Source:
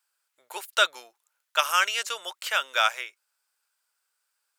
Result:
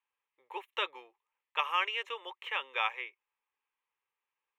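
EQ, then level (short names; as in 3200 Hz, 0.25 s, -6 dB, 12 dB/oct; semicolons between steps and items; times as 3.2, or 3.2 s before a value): air absorption 320 m; fixed phaser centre 970 Hz, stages 8; 0.0 dB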